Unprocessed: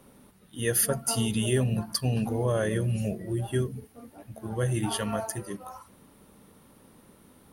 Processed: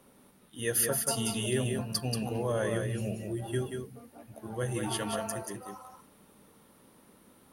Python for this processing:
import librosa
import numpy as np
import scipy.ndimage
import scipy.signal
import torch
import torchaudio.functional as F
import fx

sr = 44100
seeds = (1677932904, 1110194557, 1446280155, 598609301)

y = fx.low_shelf(x, sr, hz=180.0, db=-7.0)
y = y + 10.0 ** (-5.0 / 20.0) * np.pad(y, (int(183 * sr / 1000.0), 0))[:len(y)]
y = y * 10.0 ** (-3.0 / 20.0)